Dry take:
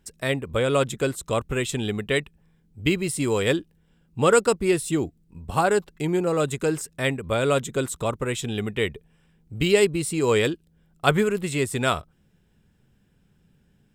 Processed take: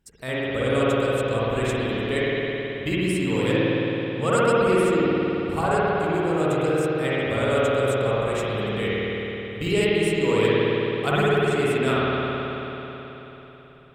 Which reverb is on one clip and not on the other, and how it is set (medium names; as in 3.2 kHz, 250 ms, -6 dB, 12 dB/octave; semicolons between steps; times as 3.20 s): spring tank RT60 3.9 s, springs 54 ms, chirp 80 ms, DRR -9 dB; trim -7.5 dB